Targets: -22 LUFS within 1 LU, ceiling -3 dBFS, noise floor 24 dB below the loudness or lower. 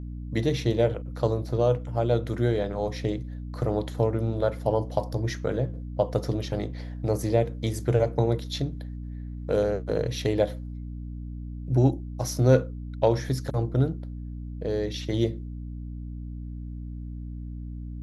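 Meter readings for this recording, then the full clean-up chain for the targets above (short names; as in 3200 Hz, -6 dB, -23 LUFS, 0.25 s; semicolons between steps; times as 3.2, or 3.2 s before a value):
hum 60 Hz; harmonics up to 300 Hz; hum level -33 dBFS; loudness -27.0 LUFS; peak -7.0 dBFS; loudness target -22.0 LUFS
-> de-hum 60 Hz, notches 5; gain +5 dB; limiter -3 dBFS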